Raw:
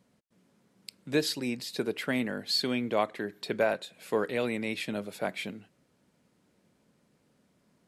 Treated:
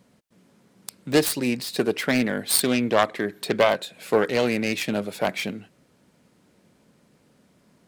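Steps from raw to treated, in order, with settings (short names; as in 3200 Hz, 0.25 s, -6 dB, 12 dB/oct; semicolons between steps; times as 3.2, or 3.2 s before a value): self-modulated delay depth 0.23 ms; gain +8.5 dB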